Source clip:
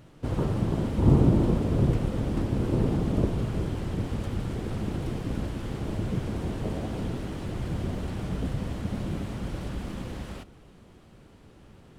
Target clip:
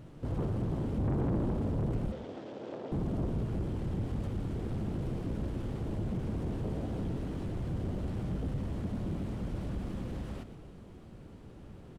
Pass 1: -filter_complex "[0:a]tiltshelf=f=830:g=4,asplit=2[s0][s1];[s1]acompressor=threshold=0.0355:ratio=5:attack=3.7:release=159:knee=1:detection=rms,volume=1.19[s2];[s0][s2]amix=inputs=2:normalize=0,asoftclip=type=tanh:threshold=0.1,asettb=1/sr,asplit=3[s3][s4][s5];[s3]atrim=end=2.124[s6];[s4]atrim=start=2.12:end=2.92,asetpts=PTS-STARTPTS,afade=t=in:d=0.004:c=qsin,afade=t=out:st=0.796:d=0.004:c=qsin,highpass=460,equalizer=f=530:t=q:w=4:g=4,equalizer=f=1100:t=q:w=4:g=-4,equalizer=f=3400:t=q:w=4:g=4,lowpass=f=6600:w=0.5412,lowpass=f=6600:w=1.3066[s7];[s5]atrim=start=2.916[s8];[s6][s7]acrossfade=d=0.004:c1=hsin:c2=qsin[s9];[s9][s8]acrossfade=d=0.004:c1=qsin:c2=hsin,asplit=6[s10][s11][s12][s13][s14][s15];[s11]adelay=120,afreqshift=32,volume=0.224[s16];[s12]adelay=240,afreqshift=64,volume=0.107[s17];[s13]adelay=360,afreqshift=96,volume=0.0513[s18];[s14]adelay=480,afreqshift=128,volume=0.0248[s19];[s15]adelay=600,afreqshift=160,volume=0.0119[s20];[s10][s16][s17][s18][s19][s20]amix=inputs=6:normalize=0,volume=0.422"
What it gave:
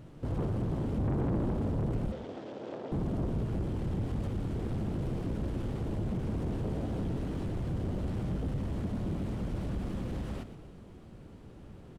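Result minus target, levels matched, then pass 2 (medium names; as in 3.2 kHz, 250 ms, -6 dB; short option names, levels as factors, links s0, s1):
compression: peak gain reduction -8 dB
-filter_complex "[0:a]tiltshelf=f=830:g=4,asplit=2[s0][s1];[s1]acompressor=threshold=0.0112:ratio=5:attack=3.7:release=159:knee=1:detection=rms,volume=1.19[s2];[s0][s2]amix=inputs=2:normalize=0,asoftclip=type=tanh:threshold=0.1,asettb=1/sr,asplit=3[s3][s4][s5];[s3]atrim=end=2.124[s6];[s4]atrim=start=2.12:end=2.92,asetpts=PTS-STARTPTS,afade=t=in:d=0.004:c=qsin,afade=t=out:st=0.796:d=0.004:c=qsin,highpass=460,equalizer=f=530:t=q:w=4:g=4,equalizer=f=1100:t=q:w=4:g=-4,equalizer=f=3400:t=q:w=4:g=4,lowpass=f=6600:w=0.5412,lowpass=f=6600:w=1.3066[s7];[s5]atrim=start=2.916[s8];[s6][s7]acrossfade=d=0.004:c1=hsin:c2=qsin[s9];[s9][s8]acrossfade=d=0.004:c1=qsin:c2=hsin,asplit=6[s10][s11][s12][s13][s14][s15];[s11]adelay=120,afreqshift=32,volume=0.224[s16];[s12]adelay=240,afreqshift=64,volume=0.107[s17];[s13]adelay=360,afreqshift=96,volume=0.0513[s18];[s14]adelay=480,afreqshift=128,volume=0.0248[s19];[s15]adelay=600,afreqshift=160,volume=0.0119[s20];[s10][s16][s17][s18][s19][s20]amix=inputs=6:normalize=0,volume=0.422"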